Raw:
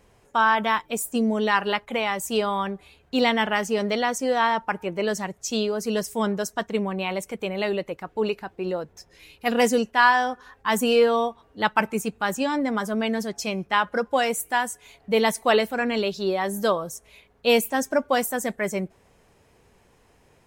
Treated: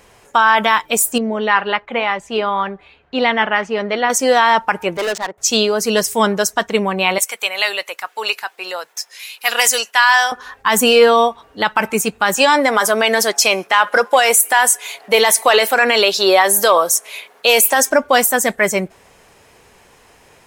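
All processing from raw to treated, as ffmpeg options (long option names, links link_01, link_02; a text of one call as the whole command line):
ffmpeg -i in.wav -filter_complex "[0:a]asettb=1/sr,asplit=3[link_01][link_02][link_03];[link_01]atrim=end=1.184[link_04];[link_02]atrim=start=1.18:end=4.1,asetpts=PTS-STARTPTS,afade=type=in:duration=0.004:curve=qsin,afade=type=out:start_time=2.916:duration=0.004:curve=qsin,lowpass=2600,flanger=delay=0.5:depth=3.8:regen=89:speed=1.9:shape=sinusoidal[link_05];[link_03]atrim=start=4.096[link_06];[link_04][link_05]acrossfade=duration=0.004:curve1=hsin:curve2=qsin[link_07];[link_07][link_06]acrossfade=duration=0.004:curve1=qsin:curve2=hsin,asettb=1/sr,asplit=3[link_08][link_09][link_10];[link_08]atrim=end=4.974[link_11];[link_09]atrim=start=4.97:end=5.38,asetpts=PTS-STARTPTS,afade=type=in:duration=0.004:curve=qsin,afade=type=out:start_time=0.406:duration=0.004:curve=qsin,highpass=370,adynamicsmooth=sensitivity=6.5:basefreq=880,volume=27dB,asoftclip=hard,volume=-27dB[link_12];[link_10]atrim=start=5.376[link_13];[link_11][link_12]acrossfade=duration=0.004:curve1=hsin:curve2=qsin[link_14];[link_14][link_13]acrossfade=duration=0.004:curve1=qsin:curve2=hsin,asettb=1/sr,asplit=3[link_15][link_16][link_17];[link_15]atrim=end=7.184[link_18];[link_16]atrim=start=7.18:end=10.32,asetpts=PTS-STARTPTS,afade=type=in:duration=0.004:curve=qsin,afade=type=out:start_time=3.136:duration=0.004:curve=qsin,highpass=930,highshelf=frequency=4600:gain=8.5[link_19];[link_17]atrim=start=10.316[link_20];[link_18][link_19]acrossfade=duration=0.004:curve1=hsin:curve2=qsin[link_21];[link_21][link_20]acrossfade=duration=0.004:curve1=qsin:curve2=hsin,asettb=1/sr,asplit=3[link_22][link_23][link_24];[link_22]atrim=end=12.374[link_25];[link_23]atrim=start=12.37:end=17.9,asetpts=PTS-STARTPTS,afade=type=in:duration=0.004:curve=qsin,afade=type=out:start_time=5.526:duration=0.004:curve=qsin,highpass=430,equalizer=frequency=11000:width_type=o:width=0.63:gain=4,acontrast=55[link_26];[link_24]atrim=start=17.896[link_27];[link_25][link_26]acrossfade=duration=0.004:curve1=hsin:curve2=qsin[link_28];[link_28][link_27]acrossfade=duration=0.004:curve1=qsin:curve2=hsin,lowshelf=frequency=460:gain=-10.5,alimiter=level_in=15.5dB:limit=-1dB:release=50:level=0:latency=1,volume=-1dB" out.wav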